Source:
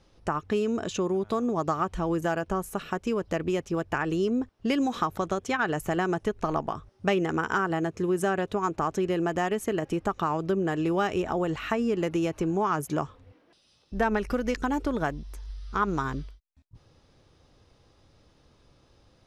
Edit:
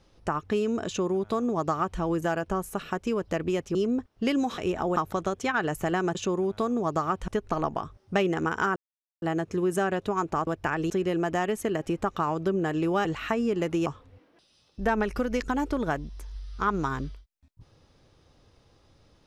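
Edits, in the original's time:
0:00.87–0:02.00: duplicate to 0:06.20
0:03.75–0:04.18: move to 0:08.93
0:07.68: splice in silence 0.46 s
0:11.08–0:11.46: move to 0:05.01
0:12.27–0:13.00: remove

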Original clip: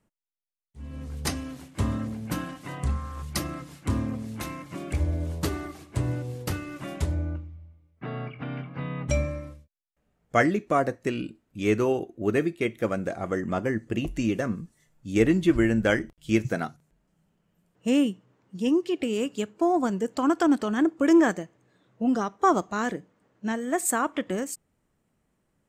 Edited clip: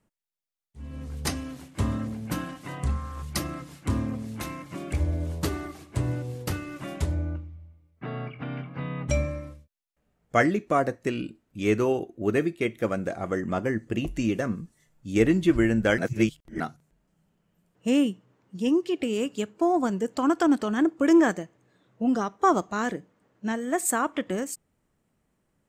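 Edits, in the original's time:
0:15.98–0:16.60: reverse

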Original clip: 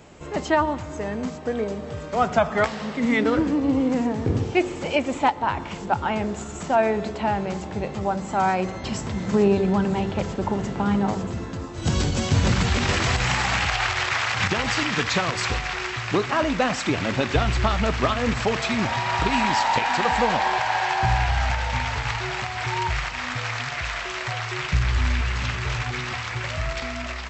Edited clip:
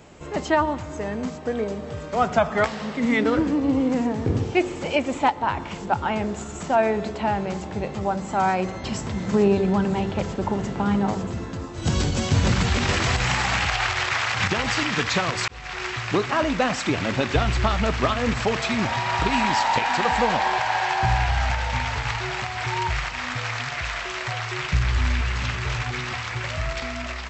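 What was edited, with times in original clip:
0:15.48–0:15.87: fade in

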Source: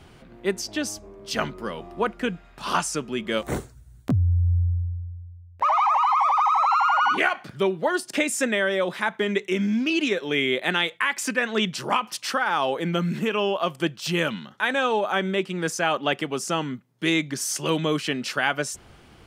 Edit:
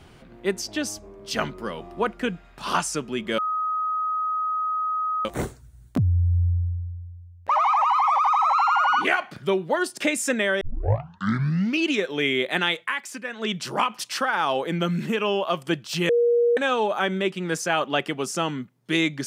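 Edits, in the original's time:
0:03.38: insert tone 1,260 Hz −22.5 dBFS 1.87 s
0:08.74: tape start 1.18 s
0:10.88–0:11.79: duck −9 dB, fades 0.34 s
0:14.22–0:14.70: beep over 475 Hz −16 dBFS

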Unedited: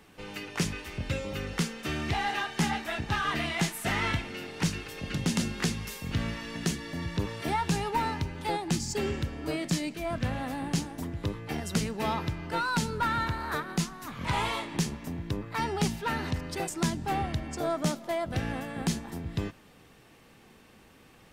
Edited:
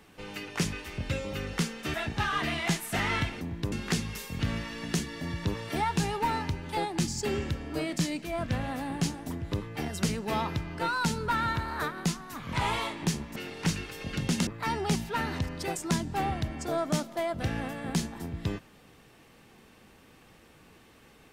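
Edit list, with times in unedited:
0:01.94–0:02.86: remove
0:04.33–0:05.44: swap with 0:15.08–0:15.39

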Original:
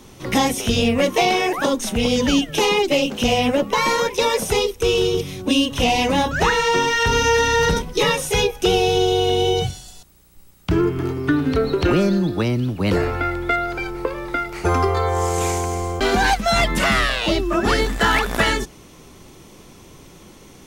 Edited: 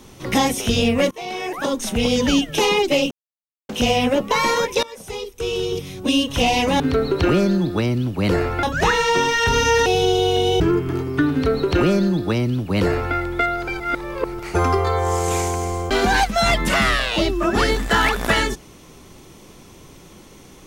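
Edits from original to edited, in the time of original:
0:01.11–0:01.93: fade in, from −23.5 dB
0:03.11: splice in silence 0.58 s
0:04.25–0:05.71: fade in linear, from −22 dB
0:07.45–0:08.79: remove
0:09.53–0:10.70: remove
0:11.42–0:13.25: duplicate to 0:06.22
0:13.90–0:14.49: reverse

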